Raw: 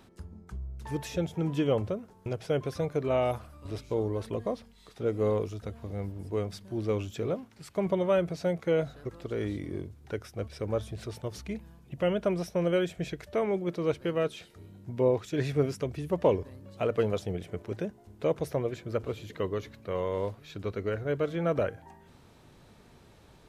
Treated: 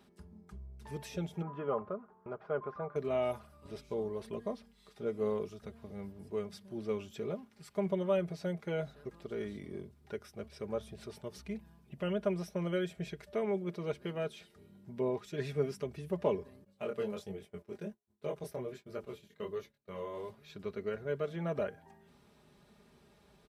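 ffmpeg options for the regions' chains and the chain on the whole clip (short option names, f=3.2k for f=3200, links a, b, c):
-filter_complex "[0:a]asettb=1/sr,asplit=3[a][b][c];[a]atrim=end=1.424[d];[b]atrim=start=1.42:end=2.96,asetpts=PTS-STARTPTS,afade=t=in:d=0.004:c=qsin,afade=t=out:st=1.536:d=0.004:c=qsin,lowpass=f=1.2k:t=q:w=3.6,lowshelf=f=240:g=-9[e];[c]atrim=start=2.956[f];[d][e]acrossfade=d=0.004:c1=hsin:c2=qsin[g];[g][f]acrossfade=d=0.004:c1=qsin:c2=hsin,asettb=1/sr,asplit=3[h][i][j];[h]atrim=end=16.644[k];[i]atrim=start=16.64:end=20.3,asetpts=PTS-STARTPTS,afade=t=in:d=0.004:c=qsin,afade=t=out:st=3.656:d=0.004:c=qsin,highshelf=f=7k:g=7,flanger=delay=20:depth=4.4:speed=1.3,agate=range=-33dB:threshold=-42dB:ratio=3:release=100:detection=peak[l];[j]atrim=start=20.296[m];[k][l]acrossfade=d=0.004:c1=hsin:c2=qsin[n];[n][m]acrossfade=d=0.004:c1=qsin:c2=hsin,highpass=51,bandreject=f=6.8k:w=14,aecho=1:1:4.9:0.63,volume=-8dB"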